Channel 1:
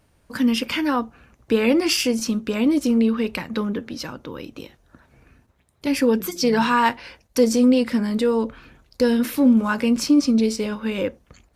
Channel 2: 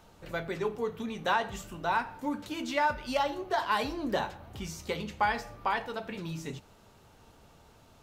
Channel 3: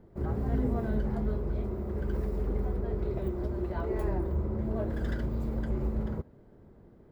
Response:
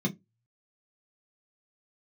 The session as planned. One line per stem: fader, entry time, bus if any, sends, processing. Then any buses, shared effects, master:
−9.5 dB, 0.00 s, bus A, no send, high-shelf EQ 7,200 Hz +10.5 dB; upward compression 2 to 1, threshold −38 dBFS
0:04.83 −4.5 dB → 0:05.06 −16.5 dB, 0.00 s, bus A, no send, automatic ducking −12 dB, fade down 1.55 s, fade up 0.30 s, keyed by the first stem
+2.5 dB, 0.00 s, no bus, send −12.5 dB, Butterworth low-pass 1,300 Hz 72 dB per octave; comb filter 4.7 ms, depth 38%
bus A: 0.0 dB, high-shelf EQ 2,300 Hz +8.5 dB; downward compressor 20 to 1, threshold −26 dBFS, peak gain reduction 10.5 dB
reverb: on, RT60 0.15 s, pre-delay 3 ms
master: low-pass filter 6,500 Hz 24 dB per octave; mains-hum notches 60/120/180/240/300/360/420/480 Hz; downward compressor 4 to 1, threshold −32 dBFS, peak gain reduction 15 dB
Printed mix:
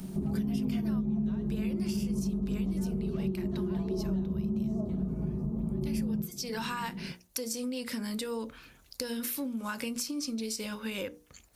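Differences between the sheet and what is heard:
stem 3: send −12.5 dB → −5 dB
master: missing low-pass filter 6,500 Hz 24 dB per octave

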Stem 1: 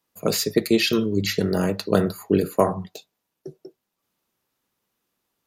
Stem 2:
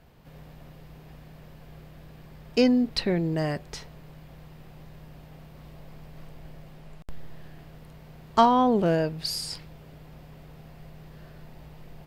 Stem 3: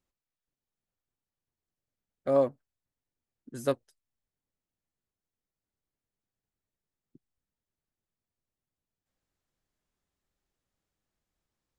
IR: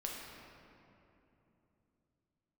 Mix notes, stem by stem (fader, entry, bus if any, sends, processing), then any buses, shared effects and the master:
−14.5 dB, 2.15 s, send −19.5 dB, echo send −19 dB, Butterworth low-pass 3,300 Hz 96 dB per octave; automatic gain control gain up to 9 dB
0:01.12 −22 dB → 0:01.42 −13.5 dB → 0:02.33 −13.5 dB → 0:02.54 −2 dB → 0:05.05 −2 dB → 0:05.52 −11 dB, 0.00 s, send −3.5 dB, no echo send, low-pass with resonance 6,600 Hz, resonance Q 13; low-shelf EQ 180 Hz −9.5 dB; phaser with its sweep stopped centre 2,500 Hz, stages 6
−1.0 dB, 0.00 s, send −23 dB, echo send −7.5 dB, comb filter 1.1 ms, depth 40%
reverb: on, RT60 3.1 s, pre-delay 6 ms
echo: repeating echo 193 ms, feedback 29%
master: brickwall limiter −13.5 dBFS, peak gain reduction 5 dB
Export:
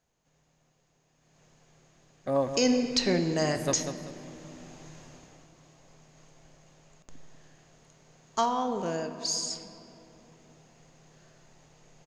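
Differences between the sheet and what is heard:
stem 1: muted
stem 2: missing phaser with its sweep stopped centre 2,500 Hz, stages 6

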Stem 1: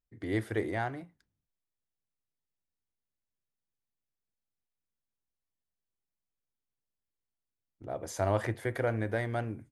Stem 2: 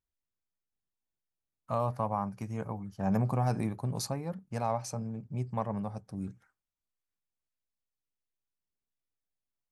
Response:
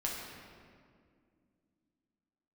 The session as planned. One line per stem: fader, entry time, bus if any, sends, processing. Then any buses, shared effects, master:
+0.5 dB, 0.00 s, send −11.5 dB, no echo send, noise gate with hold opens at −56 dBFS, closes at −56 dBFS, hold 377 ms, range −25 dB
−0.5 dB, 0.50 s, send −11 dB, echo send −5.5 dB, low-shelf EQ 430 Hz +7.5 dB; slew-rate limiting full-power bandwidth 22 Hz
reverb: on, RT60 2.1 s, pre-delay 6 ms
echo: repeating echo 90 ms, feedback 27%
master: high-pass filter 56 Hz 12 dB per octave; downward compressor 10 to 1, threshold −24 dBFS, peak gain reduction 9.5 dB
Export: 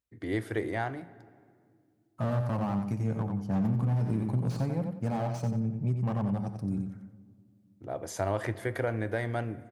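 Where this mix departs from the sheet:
stem 1: missing noise gate with hold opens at −56 dBFS, closes at −56 dBFS, hold 377 ms, range −25 dB
reverb return −7.0 dB

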